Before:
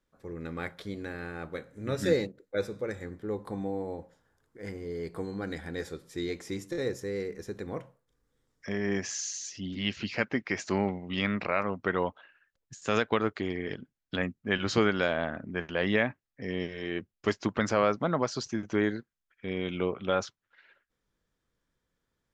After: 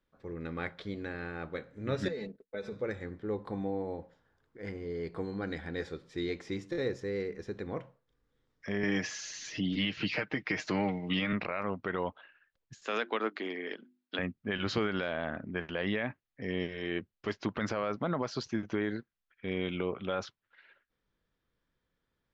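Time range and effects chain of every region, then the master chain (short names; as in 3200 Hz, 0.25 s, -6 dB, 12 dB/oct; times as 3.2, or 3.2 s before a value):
2.08–2.72 gate -56 dBFS, range -18 dB + comb 4.6 ms, depth 69% + compressor 5:1, threshold -34 dBFS
8.83–11.33 comb 6.5 ms, depth 58% + three-band squash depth 70%
12.83–14.19 steep high-pass 210 Hz + low shelf 320 Hz -7 dB + notches 50/100/150/200/250/300/350 Hz
whole clip: Chebyshev low-pass 3700 Hz, order 2; limiter -20.5 dBFS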